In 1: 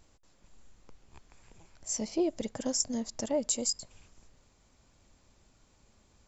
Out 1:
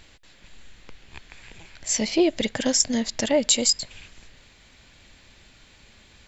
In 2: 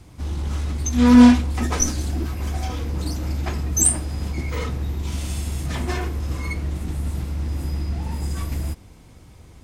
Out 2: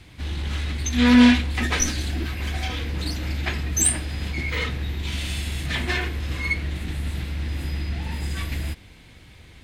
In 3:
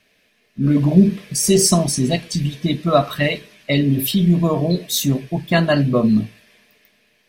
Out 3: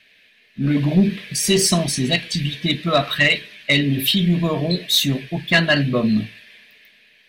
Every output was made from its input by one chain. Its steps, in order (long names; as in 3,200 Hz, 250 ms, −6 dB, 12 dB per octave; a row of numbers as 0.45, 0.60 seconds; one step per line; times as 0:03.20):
flat-topped bell 2,600 Hz +11 dB
soft clipping −3 dBFS
normalise the peak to −6 dBFS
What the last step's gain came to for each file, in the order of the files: +9.0, −2.0, −2.5 decibels